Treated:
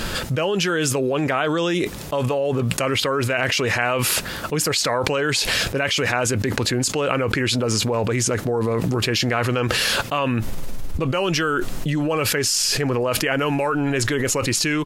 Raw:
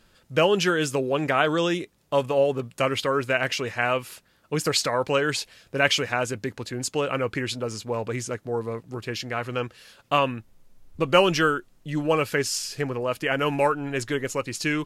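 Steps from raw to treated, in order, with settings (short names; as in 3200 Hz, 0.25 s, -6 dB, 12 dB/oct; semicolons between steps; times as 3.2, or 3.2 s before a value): ending faded out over 0.57 s; fast leveller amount 100%; gain -7 dB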